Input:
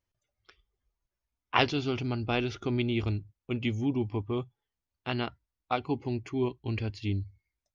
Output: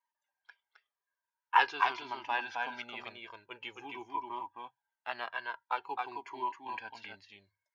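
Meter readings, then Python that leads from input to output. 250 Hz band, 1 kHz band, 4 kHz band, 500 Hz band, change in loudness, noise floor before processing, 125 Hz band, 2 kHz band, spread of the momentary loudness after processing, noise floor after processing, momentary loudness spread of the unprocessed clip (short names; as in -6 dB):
-21.5 dB, +3.5 dB, -6.0 dB, -13.0 dB, -4.0 dB, under -85 dBFS, -34.5 dB, +1.5 dB, 19 LU, under -85 dBFS, 8 LU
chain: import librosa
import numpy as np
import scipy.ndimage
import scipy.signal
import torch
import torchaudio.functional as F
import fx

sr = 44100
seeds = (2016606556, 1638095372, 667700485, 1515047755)

y = scipy.signal.sosfilt(scipy.signal.butter(2, 750.0, 'highpass', fs=sr, output='sos'), x)
y = fx.high_shelf(y, sr, hz=3300.0, db=-7.0)
y = fx.small_body(y, sr, hz=(950.0, 1600.0), ring_ms=35, db=18)
y = fx.quant_float(y, sr, bits=6)
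y = y + 10.0 ** (-4.0 / 20.0) * np.pad(y, (int(265 * sr / 1000.0), 0))[:len(y)]
y = fx.comb_cascade(y, sr, direction='falling', hz=0.47)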